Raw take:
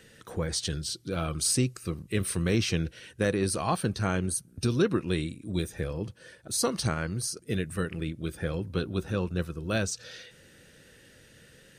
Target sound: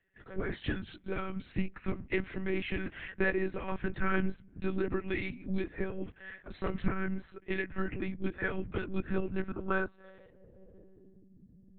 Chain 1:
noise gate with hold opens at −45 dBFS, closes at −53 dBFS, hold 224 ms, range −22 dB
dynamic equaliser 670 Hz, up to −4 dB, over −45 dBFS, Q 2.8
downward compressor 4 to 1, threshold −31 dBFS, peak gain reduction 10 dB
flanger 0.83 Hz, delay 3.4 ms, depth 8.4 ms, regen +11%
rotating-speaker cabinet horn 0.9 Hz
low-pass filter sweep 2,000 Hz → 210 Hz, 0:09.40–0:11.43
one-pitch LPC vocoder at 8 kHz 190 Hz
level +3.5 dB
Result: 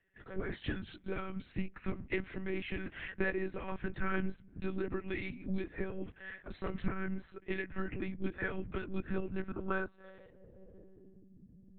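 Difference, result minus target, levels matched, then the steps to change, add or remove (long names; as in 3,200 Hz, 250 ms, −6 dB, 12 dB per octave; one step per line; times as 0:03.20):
downward compressor: peak gain reduction +4.5 dB
change: downward compressor 4 to 1, threshold −25 dBFS, peak gain reduction 5.5 dB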